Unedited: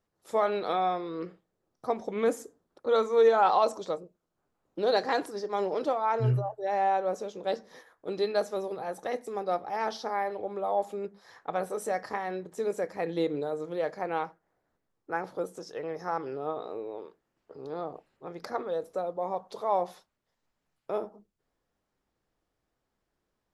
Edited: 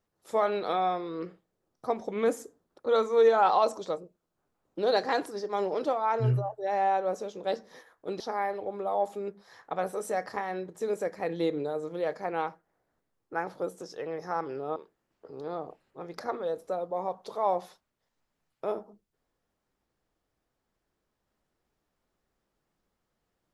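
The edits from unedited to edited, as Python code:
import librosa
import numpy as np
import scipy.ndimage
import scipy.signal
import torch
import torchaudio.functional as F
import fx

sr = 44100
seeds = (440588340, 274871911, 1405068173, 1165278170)

y = fx.edit(x, sr, fx.cut(start_s=8.2, length_s=1.77),
    fx.cut(start_s=16.53, length_s=0.49), tone=tone)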